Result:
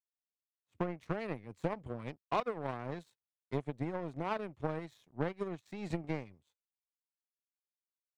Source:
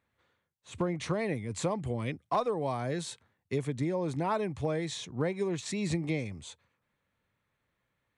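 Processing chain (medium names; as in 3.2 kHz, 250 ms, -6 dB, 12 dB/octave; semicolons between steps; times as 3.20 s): treble shelf 4.1 kHz -11.5 dB; power-law waveshaper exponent 2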